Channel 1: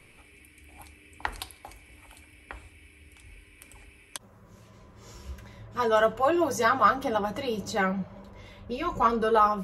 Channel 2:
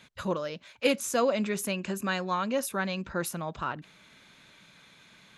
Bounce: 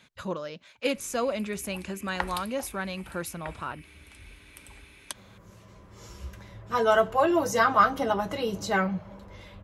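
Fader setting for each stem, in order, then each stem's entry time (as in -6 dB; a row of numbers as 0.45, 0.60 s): +1.0, -2.5 dB; 0.95, 0.00 s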